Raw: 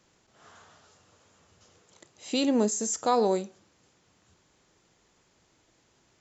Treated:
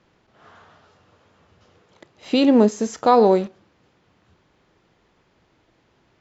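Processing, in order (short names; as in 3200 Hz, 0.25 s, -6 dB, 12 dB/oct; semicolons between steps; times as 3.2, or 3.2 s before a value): in parallel at -5 dB: bit-crush 7-bit; on the sum: air absorption 220 m; gain +6.5 dB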